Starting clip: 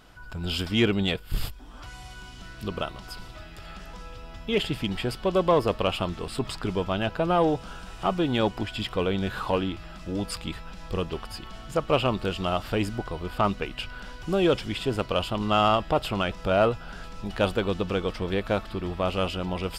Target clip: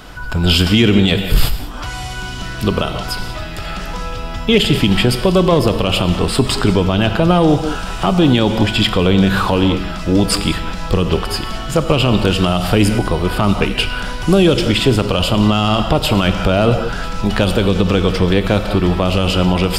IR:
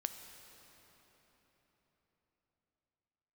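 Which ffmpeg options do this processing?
-filter_complex "[0:a]asettb=1/sr,asplit=3[a][b][c];[a]atrim=end=12.334[d];[b]atrim=start=12.33:end=14.57,asetpts=PTS-STARTPTS,afade=t=in:d=0.004:c=qsin,afade=t=out:st=2.236:d=0.004:c=qsin,equalizer=f=10k:t=o:w=0.23:g=7[e];[c]atrim=start=14.566[f];[d][e]acrossfade=d=0.004:c1=hsin:c2=qsin[g];[g][f]acrossfade=d=0.004:c1=qsin:c2=hsin[h];[1:a]atrim=start_sample=2205,afade=t=out:st=0.26:d=0.01,atrim=end_sample=11907[i];[h][i]afir=irnorm=-1:irlink=0,acrossover=split=300|3000[j][k][l];[k]acompressor=threshold=-35dB:ratio=2.5[m];[j][m][l]amix=inputs=3:normalize=0,alimiter=level_in=19.5dB:limit=-1dB:release=50:level=0:latency=1,volume=-1dB"

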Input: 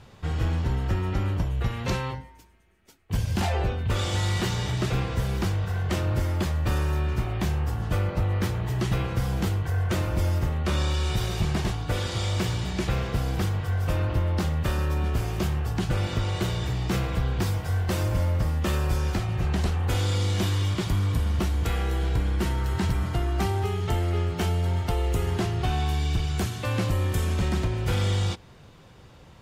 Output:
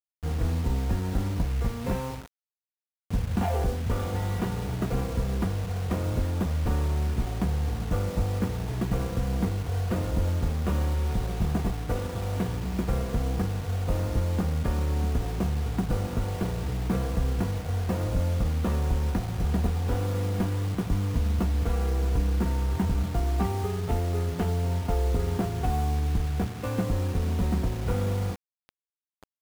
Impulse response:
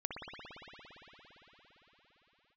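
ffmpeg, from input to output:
-af "adynamicsmooth=sensitivity=1:basefreq=580,aecho=1:1:4.2:0.46,acrusher=bits=6:mix=0:aa=0.000001"

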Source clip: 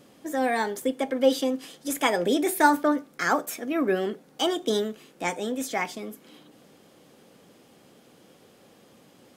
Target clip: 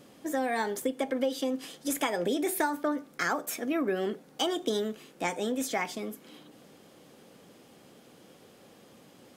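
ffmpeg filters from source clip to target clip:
-af "acompressor=threshold=-25dB:ratio=10"

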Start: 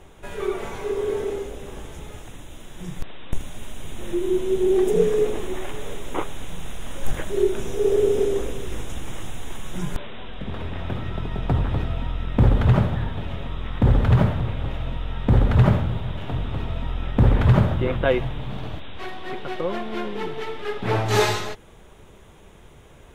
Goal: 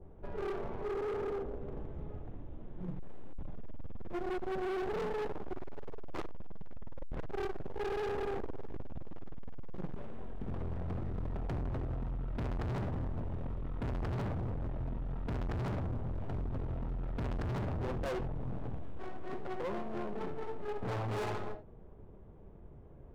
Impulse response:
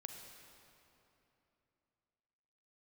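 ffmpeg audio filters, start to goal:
-filter_complex "[0:a]aresample=16000,asoftclip=type=tanh:threshold=-17.5dB,aresample=44100,adynamicsmooth=sensitivity=1:basefreq=630[a];[1:a]atrim=start_sample=2205,atrim=end_sample=3969[b];[a][b]afir=irnorm=-1:irlink=0,asoftclip=type=hard:threshold=-35.5dB,adynamicequalizer=threshold=0.00251:dfrequency=1600:dqfactor=0.7:tfrequency=1600:tqfactor=0.7:attack=5:release=100:ratio=0.375:range=2:mode=cutabove:tftype=highshelf,volume=1.5dB"

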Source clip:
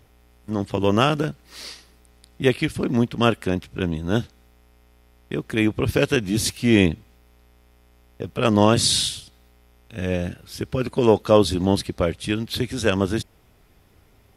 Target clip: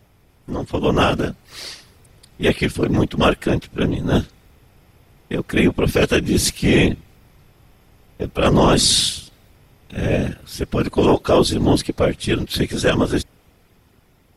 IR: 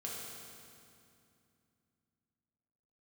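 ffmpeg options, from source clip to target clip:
-af "afftfilt=real='hypot(re,im)*cos(2*PI*random(0))':imag='hypot(re,im)*sin(2*PI*random(1))':win_size=512:overlap=0.75,dynaudnorm=f=360:g=7:m=4dB,apsyclip=14.5dB,volume=-7.5dB"

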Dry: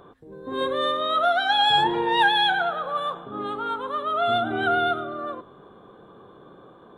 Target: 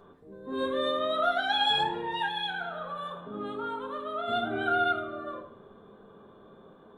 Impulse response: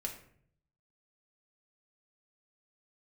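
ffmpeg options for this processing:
-filter_complex "[0:a]asettb=1/sr,asplit=3[a][b][c];[a]atrim=end=1.834[d];[b]atrim=start=1.83:end=4.28,asetpts=PTS-STARTPTS,afade=t=in:d=0.004:c=qsin,afade=t=out:st=2.446:d=0.004:c=qsin,acompressor=threshold=-29dB:ratio=2[e];[c]atrim=start=4.276[f];[d][e]acrossfade=d=0.004:c1=hsin:c2=qsin[g];[g][f]acrossfade=d=0.004:c1=qsin:c2=hsin[h];[1:a]atrim=start_sample=2205[i];[h][i]afir=irnorm=-1:irlink=0,volume=-5dB"

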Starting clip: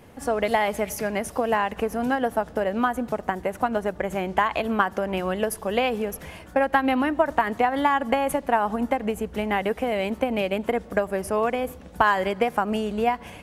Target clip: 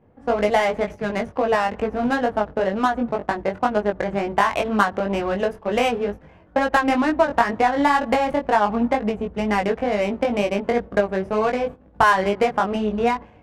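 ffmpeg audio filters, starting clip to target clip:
-af "adynamicsmooth=sensitivity=3:basefreq=1.2k,agate=range=-10dB:threshold=-33dB:ratio=16:detection=peak,flanger=delay=19:depth=2.5:speed=2.1,volume=6.5dB"

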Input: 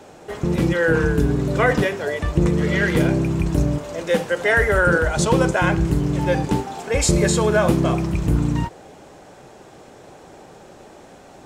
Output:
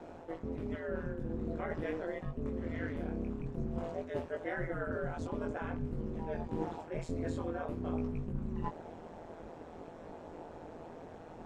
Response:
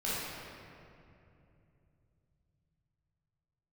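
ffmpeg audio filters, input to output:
-af "lowpass=f=1k:p=1,areverse,acompressor=threshold=-31dB:ratio=10,areverse,flanger=delay=18:depth=4.7:speed=0.49,aeval=exprs='val(0)*sin(2*PI*82*n/s)':c=same,volume=2.5dB"

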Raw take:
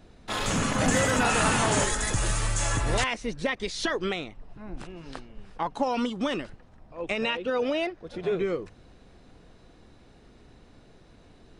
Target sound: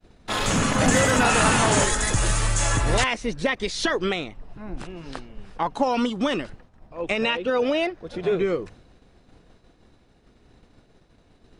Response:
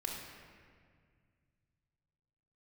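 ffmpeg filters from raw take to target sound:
-af "agate=range=-33dB:threshold=-46dB:ratio=3:detection=peak,volume=4.5dB"

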